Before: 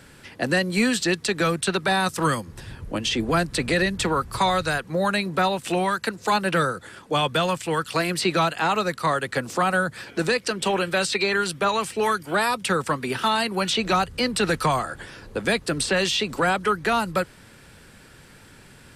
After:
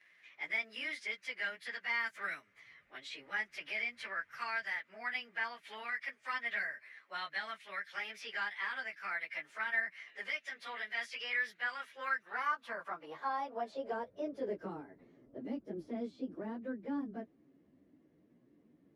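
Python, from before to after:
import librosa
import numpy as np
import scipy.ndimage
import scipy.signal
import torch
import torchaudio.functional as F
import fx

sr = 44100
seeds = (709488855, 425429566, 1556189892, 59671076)

y = fx.pitch_bins(x, sr, semitones=3.5)
y = fx.filter_sweep_bandpass(y, sr, from_hz=2000.0, to_hz=290.0, start_s=11.72, end_s=15.05, q=2.9)
y = y * librosa.db_to_amplitude(-5.0)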